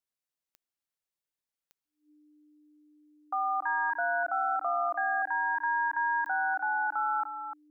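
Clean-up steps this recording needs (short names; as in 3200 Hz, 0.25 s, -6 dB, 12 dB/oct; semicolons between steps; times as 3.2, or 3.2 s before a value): de-click; notch 300 Hz, Q 30; inverse comb 0.298 s -9 dB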